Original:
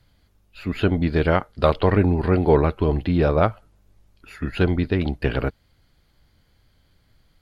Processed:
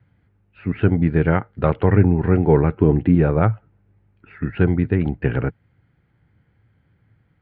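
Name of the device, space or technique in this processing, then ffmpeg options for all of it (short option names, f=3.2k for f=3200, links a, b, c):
bass cabinet: -filter_complex "[0:a]highpass=82,equalizer=f=110:t=q:w=4:g=9,equalizer=f=160:t=q:w=4:g=5,equalizer=f=620:t=q:w=4:g=-7,equalizer=f=1.1k:t=q:w=4:g=-6,lowpass=f=2.2k:w=0.5412,lowpass=f=2.2k:w=1.3066,asettb=1/sr,asplit=3[a][b][c];[a]atrim=end=2.734[d];[b]atrim=start=2.73:end=3.15,asetpts=PTS-STARTPTS,afade=t=in:d=0.004:c=qsin,afade=t=out:st=0.416:d=0.004:c=qsin,equalizer=f=290:w=1:g=6[e];[c]atrim=start=3.146[f];[d][e]acrossfade=d=0.004:c1=hsin:c2=qsin[g];[g][f]acrossfade=d=0.004:c1=qsin:c2=hsin,volume=1.5dB"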